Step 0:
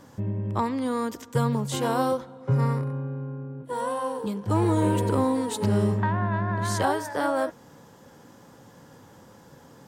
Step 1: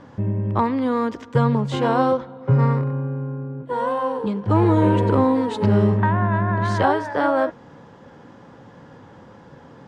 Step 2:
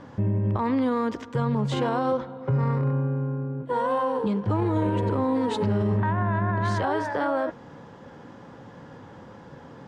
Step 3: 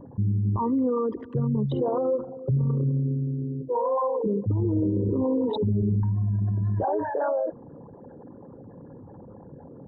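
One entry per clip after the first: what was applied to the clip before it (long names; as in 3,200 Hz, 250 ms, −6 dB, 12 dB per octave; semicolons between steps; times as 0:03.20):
low-pass filter 3,000 Hz 12 dB per octave; level +6 dB
brickwall limiter −17 dBFS, peak gain reduction 10.5 dB
spectral envelope exaggerated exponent 3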